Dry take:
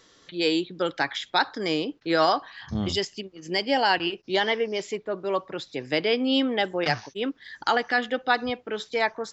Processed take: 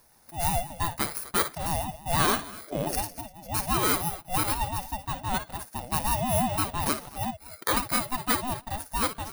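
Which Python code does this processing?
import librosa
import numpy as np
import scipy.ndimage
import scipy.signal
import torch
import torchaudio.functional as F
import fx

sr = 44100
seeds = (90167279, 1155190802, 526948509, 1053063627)

y = fx.bit_reversed(x, sr, seeds[0], block=16)
y = fx.echo_multitap(y, sr, ms=(56, 248), db=(-11.0, -19.0))
y = fx.ring_lfo(y, sr, carrier_hz=430.0, swing_pct=20, hz=5.9)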